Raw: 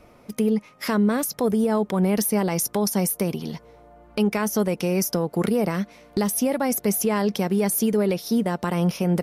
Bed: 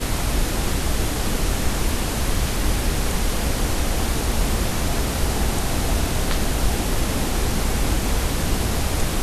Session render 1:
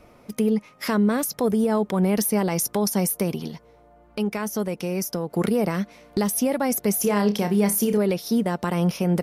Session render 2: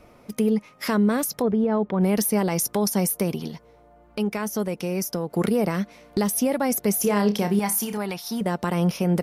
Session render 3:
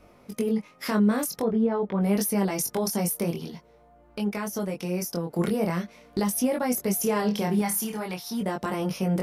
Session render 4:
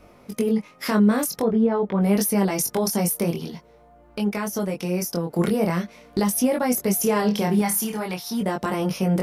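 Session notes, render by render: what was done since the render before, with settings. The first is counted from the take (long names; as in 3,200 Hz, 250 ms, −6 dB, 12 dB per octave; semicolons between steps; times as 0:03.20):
0:03.48–0:05.30: clip gain −4 dB; 0:06.99–0:07.98: flutter between parallel walls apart 5 metres, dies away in 0.21 s
0:01.42–0:02.01: high-frequency loss of the air 350 metres; 0:07.59–0:08.41: low shelf with overshoot 650 Hz −6.5 dB, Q 3
chorus effect 0.46 Hz, delay 20 ms, depth 3.7 ms
level +4 dB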